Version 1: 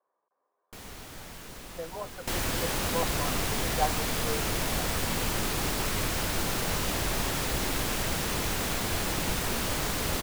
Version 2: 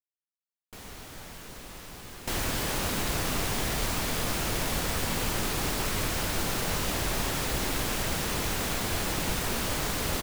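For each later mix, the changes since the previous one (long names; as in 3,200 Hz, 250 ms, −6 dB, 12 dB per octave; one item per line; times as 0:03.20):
speech: muted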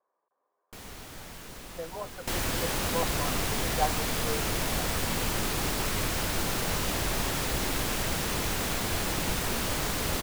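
speech: unmuted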